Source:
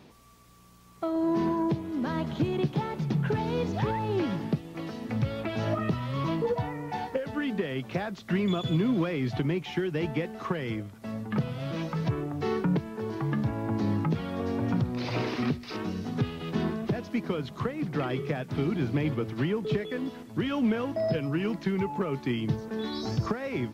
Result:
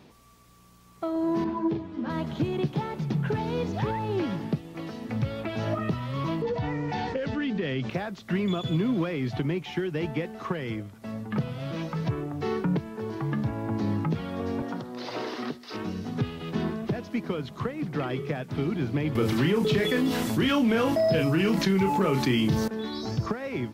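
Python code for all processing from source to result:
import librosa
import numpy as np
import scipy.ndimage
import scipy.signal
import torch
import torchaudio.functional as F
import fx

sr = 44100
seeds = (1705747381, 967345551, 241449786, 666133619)

y = fx.chain(x, sr, fx.lowpass(hz=4500.0, slope=12),
    fx.doubler(ms=40.0, db=-5),
    fx.ensemble(), at=(1.44, 2.1))
y = fx.chain(y, sr, fx.lowpass(hz=6000.0, slope=24),
    fx.peak_eq(hz=880.0, db=-6.0, octaves=1.9),
    fx.env_flatten(amount_pct=70), at=(6.42, 7.9))
y = fx.chain(y, sr, fx.highpass(hz=320.0, slope=12),
    fx.peak_eq(hz=2400.0, db=-9.0, octaves=0.29), at=(14.62, 15.73))
y = fx.chain(y, sr, fx.high_shelf(hz=3500.0, db=8.5),
    fx.doubler(ms=31.0, db=-7.0),
    fx.env_flatten(amount_pct=70), at=(19.15, 22.68))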